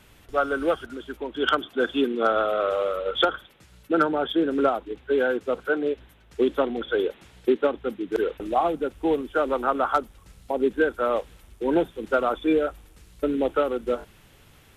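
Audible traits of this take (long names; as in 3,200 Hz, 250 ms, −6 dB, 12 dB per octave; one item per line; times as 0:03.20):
background noise floor −55 dBFS
spectral slope −2.5 dB per octave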